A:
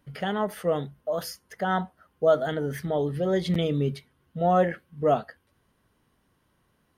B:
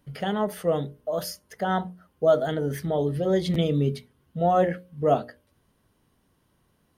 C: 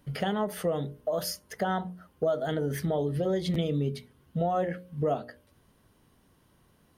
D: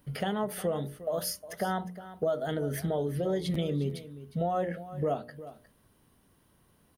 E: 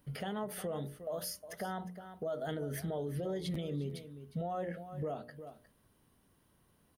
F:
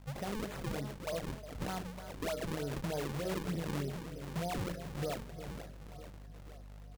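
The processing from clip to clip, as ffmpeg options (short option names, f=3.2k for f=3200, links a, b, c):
-af "equalizer=f=1.6k:t=o:w=1.9:g=-5,bandreject=f=60:t=h:w=6,bandreject=f=120:t=h:w=6,bandreject=f=180:t=h:w=6,bandreject=f=240:t=h:w=6,bandreject=f=300:t=h:w=6,bandreject=f=360:t=h:w=6,bandreject=f=420:t=h:w=6,bandreject=f=480:t=h:w=6,bandreject=f=540:t=h:w=6,bandreject=f=600:t=h:w=6,volume=3dB"
-af "acompressor=threshold=-30dB:ratio=4,volume=3.5dB"
-af "aexciter=amount=1.6:drive=6:freq=9.3k,aecho=1:1:358:0.178,volume=-2dB"
-af "alimiter=level_in=1.5dB:limit=-24dB:level=0:latency=1:release=65,volume=-1.5dB,volume=-4.5dB"
-filter_complex "[0:a]aeval=exprs='val(0)+0.00251*(sin(2*PI*50*n/s)+sin(2*PI*2*50*n/s)/2+sin(2*PI*3*50*n/s)/3+sin(2*PI*4*50*n/s)/4+sin(2*PI*5*50*n/s)/5)':c=same,asplit=2[a][b];[b]aecho=0:1:479|958|1437|1916|2395|2874:0.299|0.161|0.0871|0.047|0.0254|0.0137[c];[a][c]amix=inputs=2:normalize=0,acrusher=samples=38:mix=1:aa=0.000001:lfo=1:lforange=60.8:lforate=3.3"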